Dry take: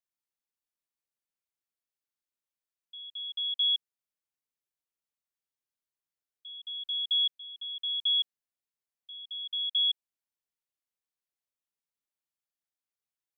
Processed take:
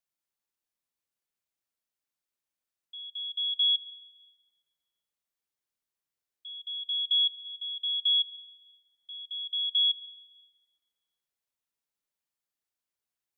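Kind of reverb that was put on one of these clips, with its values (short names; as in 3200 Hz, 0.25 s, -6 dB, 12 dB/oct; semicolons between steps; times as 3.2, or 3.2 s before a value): plate-style reverb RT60 2.9 s, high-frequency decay 0.45×, DRR 12.5 dB; gain +2 dB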